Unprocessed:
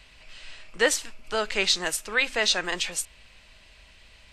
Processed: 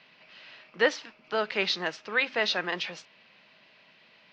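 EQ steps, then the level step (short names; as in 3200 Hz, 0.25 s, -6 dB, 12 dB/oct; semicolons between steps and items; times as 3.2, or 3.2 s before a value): elliptic band-pass 160–5500 Hz, stop band 40 dB; air absorption 170 m; 0.0 dB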